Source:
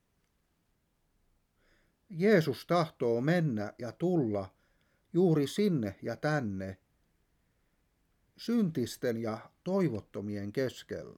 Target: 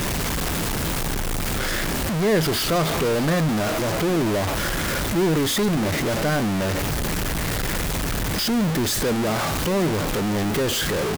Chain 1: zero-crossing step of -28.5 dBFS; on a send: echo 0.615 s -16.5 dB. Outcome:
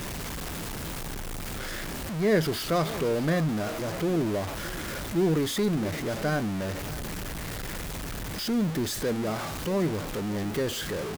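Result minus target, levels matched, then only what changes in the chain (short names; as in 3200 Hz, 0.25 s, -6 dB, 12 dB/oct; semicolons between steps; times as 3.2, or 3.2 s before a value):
zero-crossing step: distortion -6 dB
change: zero-crossing step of -18 dBFS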